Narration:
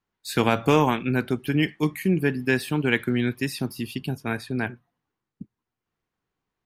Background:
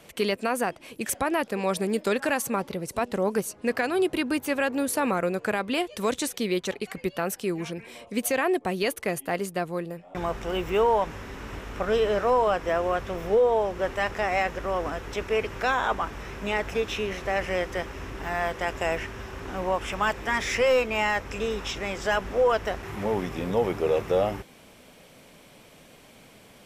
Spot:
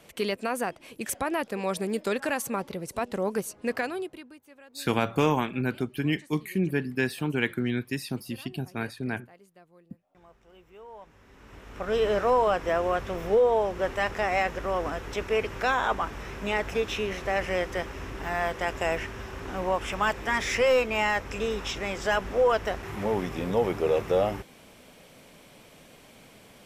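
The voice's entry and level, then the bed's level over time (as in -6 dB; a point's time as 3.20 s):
4.50 s, -4.5 dB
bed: 3.83 s -3 dB
4.41 s -26.5 dB
10.80 s -26.5 dB
12.05 s -0.5 dB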